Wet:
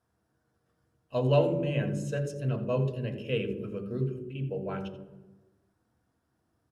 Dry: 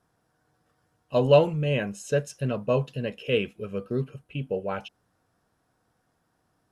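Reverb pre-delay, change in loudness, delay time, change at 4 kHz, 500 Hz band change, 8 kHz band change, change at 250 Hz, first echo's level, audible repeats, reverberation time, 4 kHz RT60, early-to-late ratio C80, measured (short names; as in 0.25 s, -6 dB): 3 ms, -4.0 dB, 85 ms, -7.0 dB, -5.5 dB, -7.5 dB, -2.0 dB, -14.0 dB, 1, 1.3 s, 0.80 s, 10.0 dB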